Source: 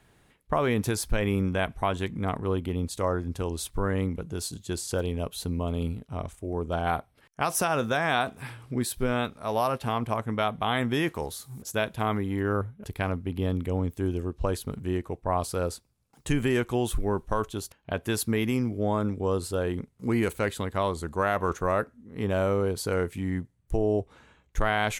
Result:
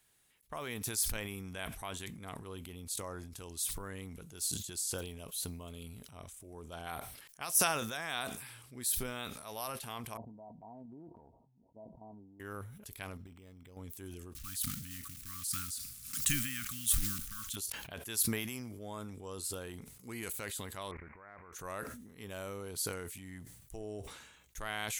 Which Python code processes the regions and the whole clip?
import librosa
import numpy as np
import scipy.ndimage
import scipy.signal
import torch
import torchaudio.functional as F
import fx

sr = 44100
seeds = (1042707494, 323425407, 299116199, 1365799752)

y = fx.chain(x, sr, fx.level_steps(step_db=9),
    fx.cheby_ripple(hz=970.0, ripple_db=9), at=(10.17, 12.4))
y = fx.chain(y, sr, fx.level_steps(step_db=12),
    fx.resample_linear(factor=8), at=(13.17, 13.77))
y = fx.chain(y, sr, fx.block_float(bits=5),
    fx.brickwall_bandstop(low_hz=300.0, high_hz=1100.0),
    fx.pre_swell(db_per_s=63.0), at=(14.35, 17.57))
y = fx.chain(y, sr, fx.crossing_spikes(level_db=-19.5),
    fx.steep_lowpass(hz=2300.0, slope=96),
    fx.level_steps(step_db=19), at=(20.91, 21.53))
y = scipy.signal.lfilter([1.0, -0.9], [1.0], y)
y = fx.transient(y, sr, attack_db=-1, sustain_db=8)
y = fx.sustainer(y, sr, db_per_s=51.0)